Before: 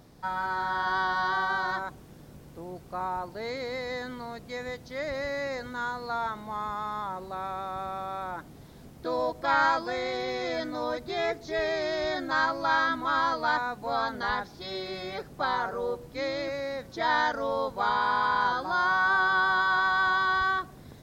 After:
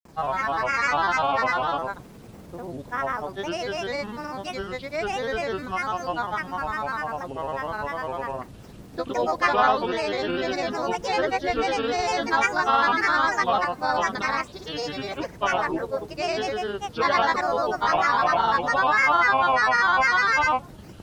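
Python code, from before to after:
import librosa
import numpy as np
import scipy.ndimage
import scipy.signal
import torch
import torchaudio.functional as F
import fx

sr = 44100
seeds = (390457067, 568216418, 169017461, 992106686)

y = fx.granulator(x, sr, seeds[0], grain_ms=100.0, per_s=20.0, spray_ms=100.0, spread_st=7)
y = y * 10.0 ** (6.0 / 20.0)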